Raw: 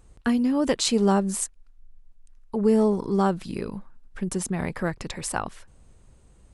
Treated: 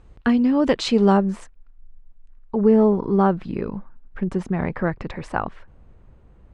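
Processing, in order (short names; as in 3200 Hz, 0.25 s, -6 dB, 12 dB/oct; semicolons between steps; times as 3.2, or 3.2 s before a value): LPF 3400 Hz 12 dB/oct, from 1.17 s 2000 Hz; gain +4.5 dB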